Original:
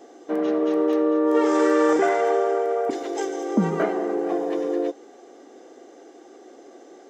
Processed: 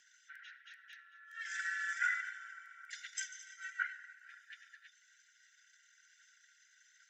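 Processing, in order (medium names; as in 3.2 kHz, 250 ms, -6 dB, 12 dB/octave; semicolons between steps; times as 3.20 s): resonances exaggerated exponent 1.5; brick-wall FIR high-pass 1.4 kHz; frequency shift -31 Hz; trim +5.5 dB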